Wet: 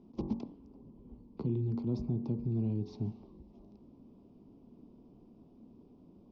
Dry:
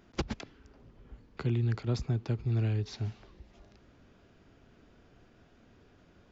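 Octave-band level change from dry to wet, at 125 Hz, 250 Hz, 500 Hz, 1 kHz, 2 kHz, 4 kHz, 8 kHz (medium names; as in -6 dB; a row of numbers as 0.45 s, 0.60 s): -5.0 dB, +3.0 dB, -2.0 dB, -8.0 dB, under -20 dB, under -15 dB, no reading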